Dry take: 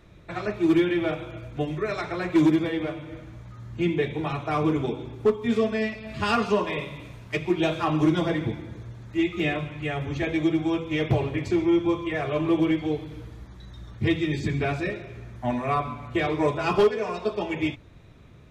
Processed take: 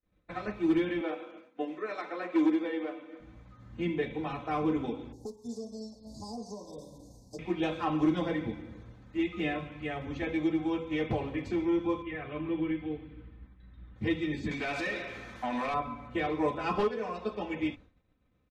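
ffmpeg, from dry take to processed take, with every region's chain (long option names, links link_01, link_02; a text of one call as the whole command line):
ffmpeg -i in.wav -filter_complex "[0:a]asettb=1/sr,asplit=3[link_01][link_02][link_03];[link_01]atrim=end=1.014[link_04];[link_02]atrim=start=1.01:end=3.2,asetpts=PTS-STARTPTS,afade=type=in:duration=0.004:curve=qsin,afade=type=out:start_time=2.186:duration=0.004:curve=qsin,highpass=frequency=270:width=0.5412,highpass=frequency=270:width=1.3066,highshelf=frequency=4400:gain=-5.5[link_05];[link_03]atrim=start=3.196[link_06];[link_04][link_05]acrossfade=duration=0.004:curve1=hsin:curve2=qsin[link_07];[link_07][link_06]acrossfade=duration=0.004:curve1=qsin:curve2=hsin,asettb=1/sr,asplit=3[link_08][link_09][link_10];[link_08]atrim=end=5.124[link_11];[link_09]atrim=start=5.12:end=7.39,asetpts=PTS-STARTPTS,afade=type=in:duration=0.004:curve=qsin,afade=type=out:start_time=2.266:duration=0.004:curve=qsin,asuperstop=centerf=2000:order=12:qfactor=0.59,highshelf=frequency=4000:width_type=q:width=1.5:gain=12.5,acrossover=split=650|1900|4000[link_12][link_13][link_14][link_15];[link_12]acompressor=threshold=-38dB:ratio=3[link_16];[link_13]acompressor=threshold=-46dB:ratio=3[link_17];[link_14]acompressor=threshold=-58dB:ratio=3[link_18];[link_15]acompressor=threshold=-44dB:ratio=3[link_19];[link_16][link_17][link_18][link_19]amix=inputs=4:normalize=0[link_20];[link_10]atrim=start=7.386[link_21];[link_11][link_20]acrossfade=duration=0.004:curve1=hsin:curve2=qsin[link_22];[link_22][link_21]acrossfade=duration=0.004:curve1=qsin:curve2=hsin,asettb=1/sr,asplit=3[link_23][link_24][link_25];[link_23]atrim=end=12.024[link_26];[link_24]atrim=start=12.02:end=13.96,asetpts=PTS-STARTPTS,afade=type=in:duration=0.004:curve=qsin,afade=type=out:start_time=1.936:duration=0.004:curve=qsin,lowpass=frequency=3000:width=0.5412,lowpass=frequency=3000:width=1.3066,equalizer=frequency=690:width=0.71:gain=-8.5[link_27];[link_25]atrim=start=13.956[link_28];[link_26][link_27]acrossfade=duration=0.004:curve1=hsin:curve2=qsin[link_29];[link_29][link_28]acrossfade=duration=0.004:curve1=qsin:curve2=hsin,asettb=1/sr,asplit=3[link_30][link_31][link_32];[link_30]atrim=end=14.514[link_33];[link_31]atrim=start=14.51:end=15.74,asetpts=PTS-STARTPTS,afade=type=in:duration=0.004:curve=qsin,afade=type=out:start_time=1.226:duration=0.004:curve=qsin,highshelf=frequency=2700:gain=7.5,acompressor=threshold=-27dB:ratio=10:attack=3.2:release=140:knee=1:detection=peak,asplit=2[link_34][link_35];[link_35]highpass=frequency=720:poles=1,volume=18dB,asoftclip=type=tanh:threshold=-18dB[link_36];[link_34][link_36]amix=inputs=2:normalize=0,lowpass=frequency=7000:poles=1,volume=-6dB[link_37];[link_32]atrim=start=15.736[link_38];[link_33][link_37]acrossfade=duration=0.004:curve1=hsin:curve2=qsin[link_39];[link_39][link_38]acrossfade=duration=0.004:curve1=qsin:curve2=hsin,agate=range=-33dB:threshold=-39dB:ratio=3:detection=peak,highshelf=frequency=5300:gain=-11,aecho=1:1:3.9:0.56,volume=-6.5dB" out.wav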